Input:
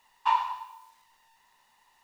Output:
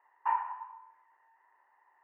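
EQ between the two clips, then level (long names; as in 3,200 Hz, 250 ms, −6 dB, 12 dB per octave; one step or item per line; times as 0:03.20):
elliptic band-pass filter 330–1,800 Hz, stop band 40 dB
low-shelf EQ 450 Hz −4 dB
dynamic equaliser 1,100 Hz, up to −7 dB, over −38 dBFS, Q 2.5
0.0 dB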